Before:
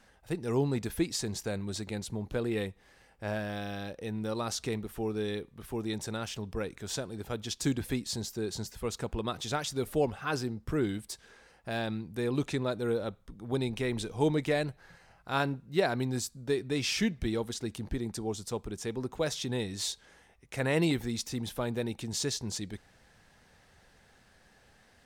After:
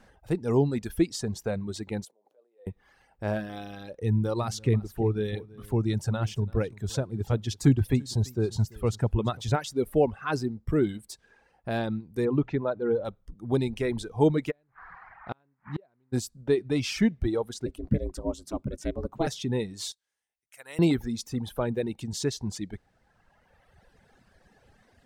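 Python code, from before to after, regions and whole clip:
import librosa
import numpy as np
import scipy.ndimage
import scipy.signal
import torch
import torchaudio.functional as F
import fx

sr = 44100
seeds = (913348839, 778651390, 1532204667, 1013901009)

y = fx.chain(x, sr, fx.peak_eq(hz=2200.0, db=-7.0, octaves=2.9),
    fx.over_compress(threshold_db=-46.0, ratio=-1.0),
    fx.ladder_highpass(hz=470.0, resonance_pct=50), at=(2.05, 2.67))
y = fx.chain(y, sr, fx.peak_eq(hz=110.0, db=10.5, octaves=0.91),
    fx.echo_single(ms=338, db=-13.5), at=(4.0, 9.56))
y = fx.chain(y, sr, fx.lowpass(hz=2200.0, slope=12),
    fx.hum_notches(base_hz=60, count=3), at=(12.25, 13.05))
y = fx.lowpass(y, sr, hz=3600.0, slope=12, at=(14.5, 16.12), fade=0.02)
y = fx.dmg_noise_band(y, sr, seeds[0], low_hz=750.0, high_hz=2000.0, level_db=-49.0, at=(14.5, 16.12), fade=0.02)
y = fx.gate_flip(y, sr, shuts_db=-26.0, range_db=-33, at=(14.5, 16.12), fade=0.02)
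y = fx.chain(y, sr, fx.low_shelf(hz=110.0, db=9.0),
    fx.ring_mod(carrier_hz=170.0), at=(17.66, 19.27))
y = fx.chain(y, sr, fx.pre_emphasis(coefficient=0.97),
    fx.upward_expand(threshold_db=-54.0, expansion=1.5), at=(19.92, 20.79))
y = fx.dereverb_blind(y, sr, rt60_s=2.0)
y = fx.tilt_shelf(y, sr, db=4.5, hz=1400.0)
y = y * librosa.db_to_amplitude(2.5)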